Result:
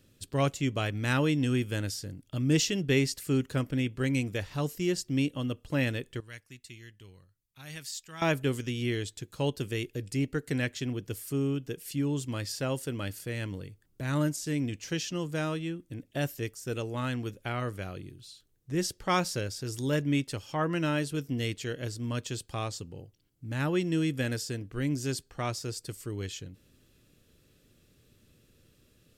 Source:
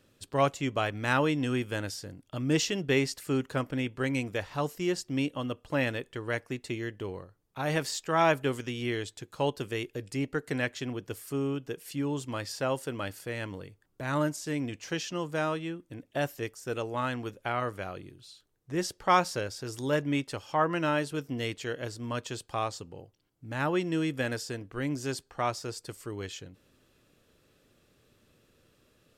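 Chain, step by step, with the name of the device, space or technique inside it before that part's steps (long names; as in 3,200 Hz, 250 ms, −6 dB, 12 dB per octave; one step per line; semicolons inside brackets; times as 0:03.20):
smiley-face EQ (low-shelf EQ 190 Hz +5 dB; parametric band 900 Hz −8.5 dB 1.8 octaves; high-shelf EQ 8,700 Hz +4 dB)
0:06.20–0:08.22: guitar amp tone stack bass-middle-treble 5-5-5
level +1.5 dB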